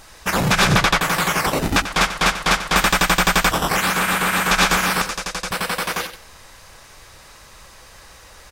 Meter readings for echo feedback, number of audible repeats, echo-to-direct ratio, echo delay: 21%, 2, -12.0 dB, 92 ms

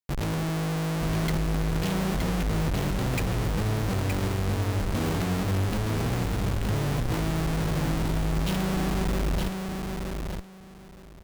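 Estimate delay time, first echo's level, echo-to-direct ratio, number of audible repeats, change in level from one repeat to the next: 0.919 s, -4.5 dB, -4.5 dB, 2, -14.5 dB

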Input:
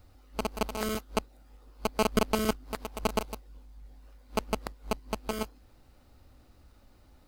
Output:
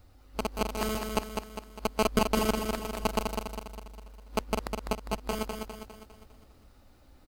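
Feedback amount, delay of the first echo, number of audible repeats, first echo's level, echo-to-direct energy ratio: 50%, 0.202 s, 5, -5.0 dB, -4.0 dB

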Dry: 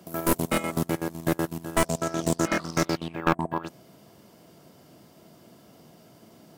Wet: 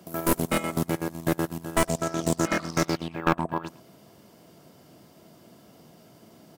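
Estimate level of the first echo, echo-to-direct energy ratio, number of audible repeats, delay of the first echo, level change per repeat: -20.0 dB, -20.0 dB, 2, 0.11 s, -13.0 dB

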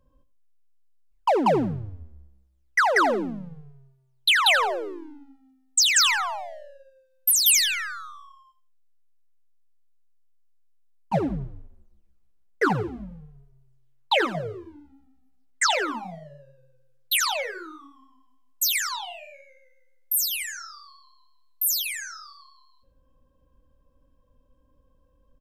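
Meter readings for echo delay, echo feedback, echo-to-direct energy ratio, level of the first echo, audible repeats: 83 ms, 22%, -15.0 dB, -15.0 dB, 2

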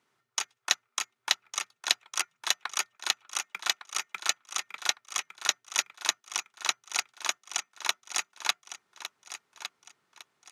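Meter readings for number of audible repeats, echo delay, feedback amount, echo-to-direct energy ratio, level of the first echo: 3, 1.157 s, 30%, -11.0 dB, -11.5 dB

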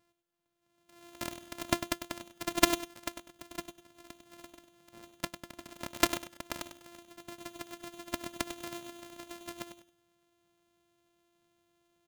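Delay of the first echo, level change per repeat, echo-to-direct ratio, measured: 99 ms, -12.0 dB, -10.0 dB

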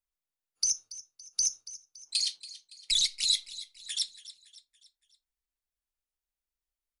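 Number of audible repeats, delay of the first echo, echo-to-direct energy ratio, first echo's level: 3, 0.282 s, -15.5 dB, -16.5 dB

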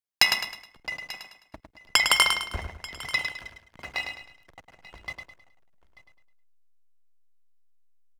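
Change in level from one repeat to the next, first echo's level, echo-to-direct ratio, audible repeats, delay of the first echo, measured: no steady repeat, -6.5 dB, -5.5 dB, 7, 0.105 s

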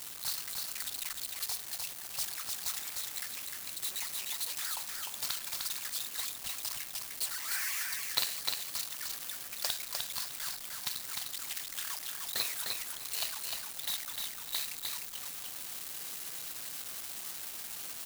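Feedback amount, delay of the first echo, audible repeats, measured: 20%, 0.303 s, 2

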